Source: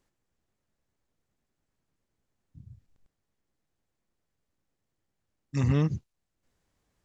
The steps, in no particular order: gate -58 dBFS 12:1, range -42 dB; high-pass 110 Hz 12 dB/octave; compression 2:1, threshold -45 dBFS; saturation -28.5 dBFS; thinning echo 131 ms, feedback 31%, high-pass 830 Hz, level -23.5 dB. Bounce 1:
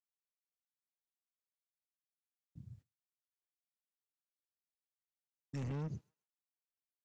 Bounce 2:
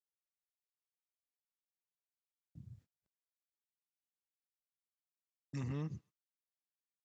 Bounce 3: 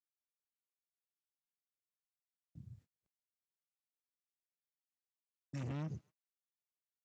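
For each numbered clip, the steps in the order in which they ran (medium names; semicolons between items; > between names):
high-pass > saturation > compression > gate > thinning echo; compression > saturation > thinning echo > gate > high-pass; saturation > thinning echo > compression > gate > high-pass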